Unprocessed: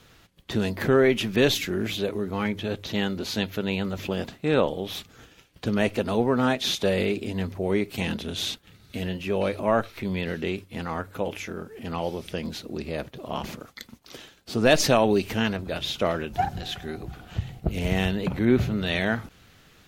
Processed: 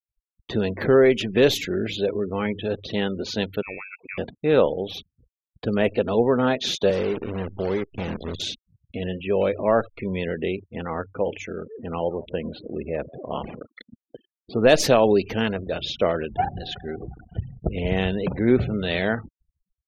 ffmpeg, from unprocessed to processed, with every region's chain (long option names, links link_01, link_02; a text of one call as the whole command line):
ffmpeg -i in.wav -filter_complex "[0:a]asettb=1/sr,asplit=3[link_01][link_02][link_03];[link_01]atrim=end=3.624[link_04];[link_02]atrim=start=3.62:end=4.18,asetpts=PTS-STARTPTS,afade=type=in:duration=0.004:curve=qsin,afade=type=out:start_time=0.556:duration=0.004:curve=qsin,highpass=frequency=970:poles=1,lowpass=frequency=2400:width_type=q:width=0.5098,lowpass=frequency=2400:width_type=q:width=0.6013,lowpass=frequency=2400:width_type=q:width=0.9,lowpass=frequency=2400:width_type=q:width=2.563,afreqshift=-2800[link_05];[link_03]atrim=start=4.176[link_06];[link_04][link_05]acrossfade=duration=0.004:curve1=hsin:curve2=qsin[link_07];[link_07][link_06]acrossfade=duration=0.004:curve1=qsin:curve2=hsin,asettb=1/sr,asplit=3[link_08][link_09][link_10];[link_08]atrim=end=6.904[link_11];[link_09]atrim=start=6.9:end=8.4,asetpts=PTS-STARTPTS,afade=type=in:duration=0.004:curve=qsin,afade=type=out:start_time=1.496:duration=0.004:curve=qsin,asubboost=boost=2.5:cutoff=220,acrossover=split=410|1400[link_12][link_13][link_14];[link_12]acompressor=threshold=-28dB:ratio=4[link_15];[link_13]acompressor=threshold=-30dB:ratio=4[link_16];[link_14]acompressor=threshold=-42dB:ratio=4[link_17];[link_15][link_16][link_17]amix=inputs=3:normalize=0,acrusher=bits=6:dc=4:mix=0:aa=0.000001[link_18];[link_10]atrim=start=8.396[link_19];[link_11][link_18]acrossfade=duration=0.004:curve1=hsin:curve2=qsin[link_20];[link_20][link_19]acrossfade=duration=0.004:curve1=qsin:curve2=hsin,asettb=1/sr,asplit=3[link_21][link_22][link_23];[link_21]atrim=end=11.584[link_24];[link_22]atrim=start=11.58:end=14.68,asetpts=PTS-STARTPTS,afade=type=in:duration=0.004:curve=qsin,afade=type=out:start_time=3.096:duration=0.004:curve=qsin,lowpass=3400,asplit=4[link_25][link_26][link_27][link_28];[link_26]adelay=166,afreqshift=83,volume=-18dB[link_29];[link_27]adelay=332,afreqshift=166,volume=-28.2dB[link_30];[link_28]adelay=498,afreqshift=249,volume=-38.3dB[link_31];[link_25][link_29][link_30][link_31]amix=inputs=4:normalize=0,atrim=end_sample=136710[link_32];[link_23]atrim=start=14.676[link_33];[link_24][link_32]acrossfade=duration=0.004:curve1=hsin:curve2=qsin[link_34];[link_34][link_33]acrossfade=duration=0.004:curve1=qsin:curve2=hsin,afftfilt=real='re*gte(hypot(re,im),0.0158)':imag='im*gte(hypot(re,im),0.0158)':win_size=1024:overlap=0.75,anlmdn=0.0398,equalizer=frequency=480:width=1.9:gain=6" out.wav